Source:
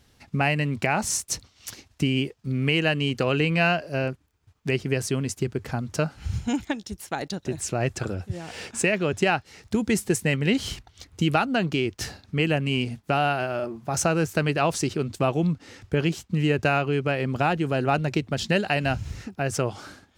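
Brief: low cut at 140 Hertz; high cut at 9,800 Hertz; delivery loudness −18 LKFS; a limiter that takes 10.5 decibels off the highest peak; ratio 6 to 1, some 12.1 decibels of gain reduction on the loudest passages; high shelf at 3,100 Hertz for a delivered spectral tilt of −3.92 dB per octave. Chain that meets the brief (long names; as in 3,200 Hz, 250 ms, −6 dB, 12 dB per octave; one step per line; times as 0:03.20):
high-pass filter 140 Hz
low-pass filter 9,800 Hz
high-shelf EQ 3,100 Hz +5.5 dB
downward compressor 6 to 1, threshold −30 dBFS
level +18.5 dB
brickwall limiter −5.5 dBFS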